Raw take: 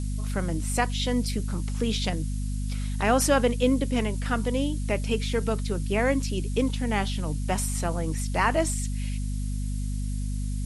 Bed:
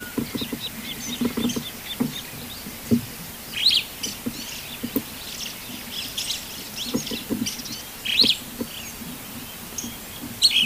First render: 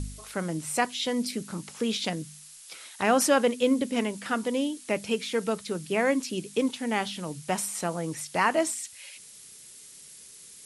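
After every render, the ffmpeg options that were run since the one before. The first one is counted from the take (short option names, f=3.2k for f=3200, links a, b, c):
-af "bandreject=f=50:t=h:w=4,bandreject=f=100:t=h:w=4,bandreject=f=150:t=h:w=4,bandreject=f=200:t=h:w=4,bandreject=f=250:t=h:w=4"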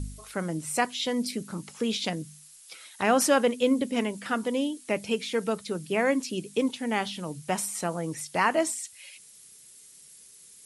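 -af "afftdn=nr=6:nf=-49"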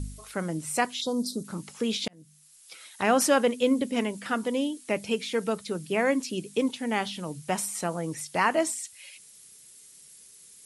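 -filter_complex "[0:a]asplit=3[a][b][c];[a]afade=t=out:st=1:d=0.02[d];[b]asuperstop=centerf=2200:order=12:qfactor=0.99,afade=t=in:st=1:d=0.02,afade=t=out:st=1.43:d=0.02[e];[c]afade=t=in:st=1.43:d=0.02[f];[d][e][f]amix=inputs=3:normalize=0,asplit=2[g][h];[g]atrim=end=2.08,asetpts=PTS-STARTPTS,afade=t=out:st=2.076:d=0.004:c=hsin[i];[h]atrim=start=2.08,asetpts=PTS-STARTPTS,afade=t=in:d=0.75[j];[i][j]concat=n=2:v=0:a=1"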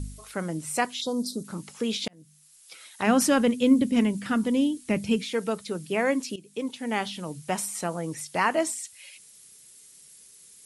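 -filter_complex "[0:a]asplit=3[a][b][c];[a]afade=t=out:st=3.06:d=0.02[d];[b]asubboost=boost=5:cutoff=250,afade=t=in:st=3.06:d=0.02,afade=t=out:st=5.23:d=0.02[e];[c]afade=t=in:st=5.23:d=0.02[f];[d][e][f]amix=inputs=3:normalize=0,asplit=2[g][h];[g]atrim=end=6.36,asetpts=PTS-STARTPTS,afade=t=out:st=6.356:d=0.004:c=hsin:silence=0.149624[i];[h]atrim=start=6.36,asetpts=PTS-STARTPTS,afade=t=in:d=0.58:silence=0.149624[j];[i][j]concat=n=2:v=0:a=1"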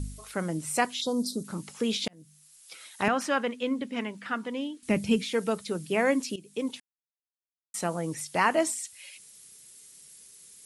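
-filter_complex "[0:a]asettb=1/sr,asplit=3[a][b][c];[a]atrim=end=3.084[d];[b]atrim=start=3.08:end=4.83,asetpts=PTS-STARTPTS,afade=t=in:d=0.004:c=qsin,afade=t=out:st=1.746:d=0.004:c=qsin,bandpass=f=1.4k:t=q:w=0.68[e];[c]atrim=start=4.826[f];[d][e]acrossfade=d=0.004:c1=hsin:c2=qsin[g];[g][f]acrossfade=d=0.004:c1=qsin:c2=hsin,asplit=3[h][i][j];[h]atrim=end=6.8,asetpts=PTS-STARTPTS,afade=t=out:st=6.796:d=0.004:c=hsin[k];[i]atrim=start=6.8:end=7.74,asetpts=PTS-STARTPTS,volume=0[l];[j]atrim=start=7.74,asetpts=PTS-STARTPTS,afade=t=in:d=0.004:c=hsin[m];[k][l][m]concat=n=3:v=0:a=1"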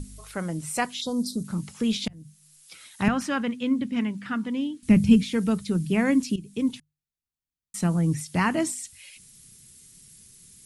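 -af "bandreject=f=50:t=h:w=6,bandreject=f=100:t=h:w=6,bandreject=f=150:t=h:w=6,asubboost=boost=10.5:cutoff=170"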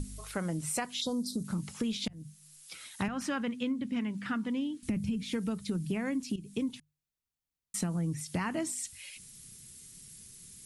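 -af "alimiter=limit=-15dB:level=0:latency=1:release=225,acompressor=threshold=-30dB:ratio=6"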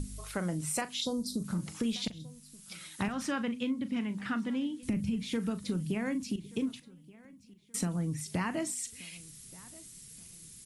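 -filter_complex "[0:a]asplit=2[a][b];[b]adelay=39,volume=-13dB[c];[a][c]amix=inputs=2:normalize=0,aecho=1:1:1178|2356|3534:0.0794|0.0286|0.0103"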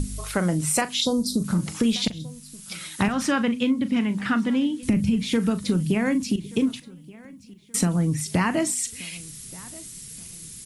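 -af "volume=10.5dB"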